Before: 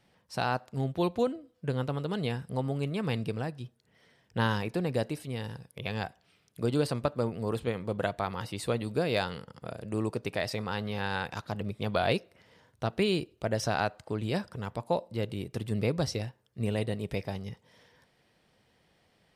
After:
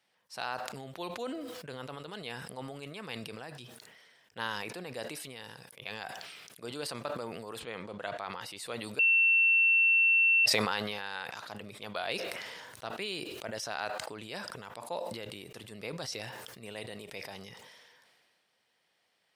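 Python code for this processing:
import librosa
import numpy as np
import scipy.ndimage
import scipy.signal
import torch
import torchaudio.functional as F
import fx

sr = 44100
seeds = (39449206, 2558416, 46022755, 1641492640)

y = fx.air_absorb(x, sr, metres=51.0, at=(7.62, 8.42))
y = fx.edit(y, sr, fx.bleep(start_s=8.99, length_s=1.47, hz=2700.0, db=-17.0), tone=tone)
y = fx.highpass(y, sr, hz=1200.0, slope=6)
y = fx.sustainer(y, sr, db_per_s=28.0)
y = F.gain(torch.from_numpy(y), -3.0).numpy()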